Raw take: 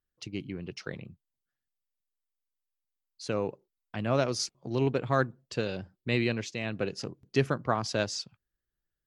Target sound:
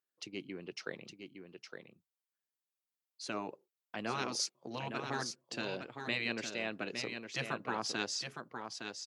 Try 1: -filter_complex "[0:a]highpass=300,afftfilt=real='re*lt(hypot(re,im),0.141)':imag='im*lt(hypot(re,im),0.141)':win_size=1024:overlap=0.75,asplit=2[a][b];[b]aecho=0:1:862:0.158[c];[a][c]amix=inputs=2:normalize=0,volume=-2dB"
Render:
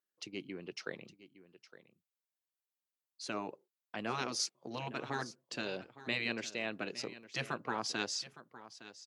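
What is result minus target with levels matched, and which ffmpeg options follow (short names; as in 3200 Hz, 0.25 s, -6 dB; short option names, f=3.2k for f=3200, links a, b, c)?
echo-to-direct -9 dB
-filter_complex "[0:a]highpass=300,afftfilt=real='re*lt(hypot(re,im),0.141)':imag='im*lt(hypot(re,im),0.141)':win_size=1024:overlap=0.75,asplit=2[a][b];[b]aecho=0:1:862:0.447[c];[a][c]amix=inputs=2:normalize=0,volume=-2dB"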